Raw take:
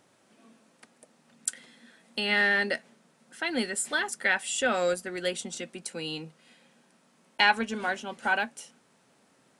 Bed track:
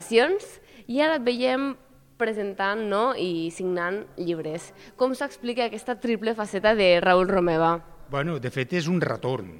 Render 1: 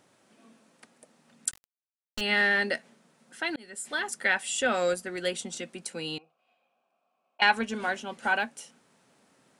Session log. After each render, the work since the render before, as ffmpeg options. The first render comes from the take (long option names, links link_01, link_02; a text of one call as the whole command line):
ffmpeg -i in.wav -filter_complex "[0:a]asettb=1/sr,asplit=3[link_01][link_02][link_03];[link_01]atrim=end=1.514[link_04];[link_02]atrim=start=1.51:end=2.21,asetpts=PTS-STARTPTS,afade=type=in:duration=0.004:curve=qsin,afade=type=out:start_time=0.696:duration=0.004:curve=qsin,acrusher=bits=4:dc=4:mix=0:aa=0.000001[link_05];[link_03]atrim=start=2.206[link_06];[link_04][link_05]acrossfade=duration=0.004:curve1=hsin:curve2=qsin[link_07];[link_07][link_06]acrossfade=duration=0.004:curve1=qsin:curve2=hsin,asettb=1/sr,asplit=3[link_08][link_09][link_10];[link_08]atrim=end=6.184[link_11];[link_09]atrim=start=6.18:end=7.42,asetpts=PTS-STARTPTS,afade=type=in:duration=0.004:curve=qsin,afade=type=out:start_time=1.236:duration=0.004:curve=qsin,asplit=3[link_12][link_13][link_14];[link_12]bandpass=frequency=730:width_type=q:width=8,volume=0dB[link_15];[link_13]bandpass=frequency=1090:width_type=q:width=8,volume=-6dB[link_16];[link_14]bandpass=frequency=2440:width_type=q:width=8,volume=-9dB[link_17];[link_15][link_16][link_17]amix=inputs=3:normalize=0[link_18];[link_10]atrim=start=7.416[link_19];[link_11][link_18]acrossfade=duration=0.004:curve1=hsin:curve2=qsin[link_20];[link_20][link_19]acrossfade=duration=0.004:curve1=qsin:curve2=hsin,asplit=2[link_21][link_22];[link_21]atrim=end=3.56,asetpts=PTS-STARTPTS,afade=type=out:start_time=3.556:duration=0.004:curve=hsin[link_23];[link_22]atrim=start=3.56,asetpts=PTS-STARTPTS,afade=type=in:duration=0.56[link_24];[link_23][link_24]concat=n=2:v=0:a=1" out.wav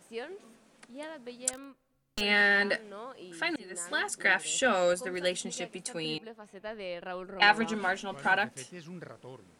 ffmpeg -i in.wav -i bed.wav -filter_complex "[1:a]volume=-20.5dB[link_01];[0:a][link_01]amix=inputs=2:normalize=0" out.wav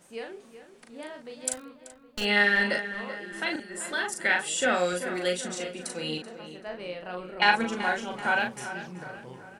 ffmpeg -i in.wav -filter_complex "[0:a]asplit=2[link_01][link_02];[link_02]adelay=39,volume=-4dB[link_03];[link_01][link_03]amix=inputs=2:normalize=0,asplit=2[link_04][link_05];[link_05]adelay=383,lowpass=frequency=3100:poles=1,volume=-11.5dB,asplit=2[link_06][link_07];[link_07]adelay=383,lowpass=frequency=3100:poles=1,volume=0.53,asplit=2[link_08][link_09];[link_09]adelay=383,lowpass=frequency=3100:poles=1,volume=0.53,asplit=2[link_10][link_11];[link_11]adelay=383,lowpass=frequency=3100:poles=1,volume=0.53,asplit=2[link_12][link_13];[link_13]adelay=383,lowpass=frequency=3100:poles=1,volume=0.53,asplit=2[link_14][link_15];[link_15]adelay=383,lowpass=frequency=3100:poles=1,volume=0.53[link_16];[link_04][link_06][link_08][link_10][link_12][link_14][link_16]amix=inputs=7:normalize=0" out.wav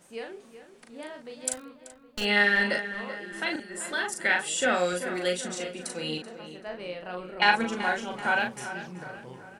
ffmpeg -i in.wav -af anull out.wav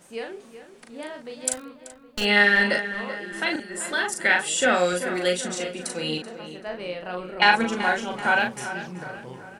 ffmpeg -i in.wav -af "volume=4.5dB,alimiter=limit=-3dB:level=0:latency=1" out.wav